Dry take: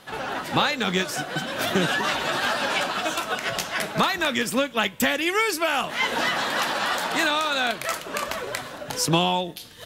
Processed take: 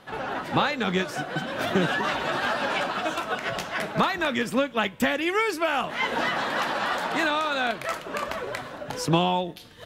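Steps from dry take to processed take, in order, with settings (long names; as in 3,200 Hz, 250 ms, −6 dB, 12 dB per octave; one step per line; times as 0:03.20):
high-shelf EQ 3,700 Hz −12 dB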